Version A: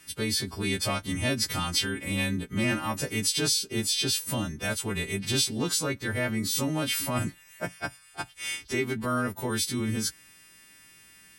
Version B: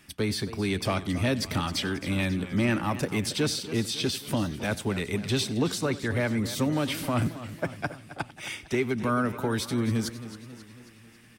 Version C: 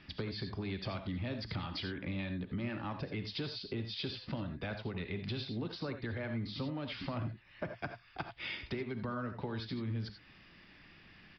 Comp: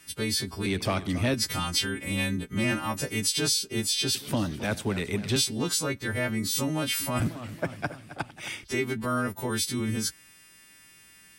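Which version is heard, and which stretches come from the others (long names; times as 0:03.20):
A
0:00.66–0:01.34: punch in from B
0:04.15–0:05.36: punch in from B
0:07.20–0:08.64: punch in from B
not used: C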